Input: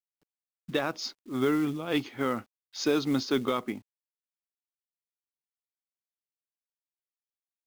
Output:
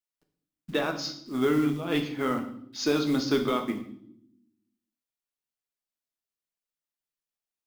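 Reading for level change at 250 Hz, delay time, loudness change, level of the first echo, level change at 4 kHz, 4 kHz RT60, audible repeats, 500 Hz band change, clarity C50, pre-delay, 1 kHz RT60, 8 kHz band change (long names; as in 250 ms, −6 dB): +2.5 dB, no echo audible, +1.5 dB, no echo audible, +1.5 dB, 0.65 s, no echo audible, +1.5 dB, 10.0 dB, 3 ms, 0.60 s, +1.0 dB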